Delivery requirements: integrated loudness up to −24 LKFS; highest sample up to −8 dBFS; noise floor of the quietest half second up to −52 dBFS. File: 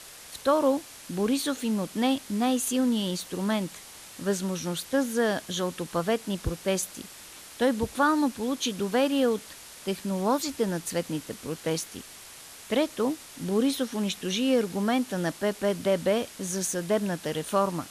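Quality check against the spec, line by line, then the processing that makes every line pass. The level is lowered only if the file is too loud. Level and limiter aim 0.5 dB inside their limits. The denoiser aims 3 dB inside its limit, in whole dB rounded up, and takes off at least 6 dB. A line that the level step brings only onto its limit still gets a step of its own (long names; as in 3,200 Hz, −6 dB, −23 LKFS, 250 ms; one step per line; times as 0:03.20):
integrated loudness −28.0 LKFS: in spec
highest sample −12.0 dBFS: in spec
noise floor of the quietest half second −46 dBFS: out of spec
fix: broadband denoise 9 dB, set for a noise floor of −46 dBFS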